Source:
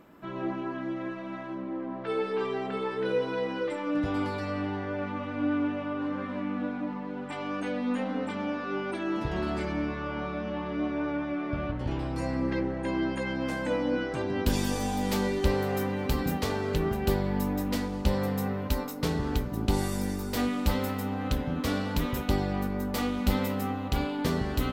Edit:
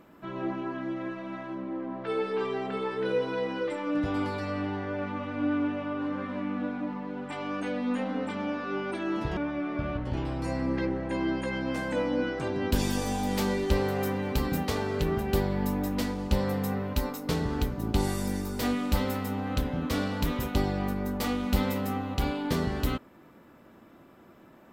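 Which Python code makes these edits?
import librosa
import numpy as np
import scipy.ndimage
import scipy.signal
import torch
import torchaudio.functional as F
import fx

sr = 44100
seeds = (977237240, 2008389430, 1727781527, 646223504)

y = fx.edit(x, sr, fx.cut(start_s=9.37, length_s=1.74), tone=tone)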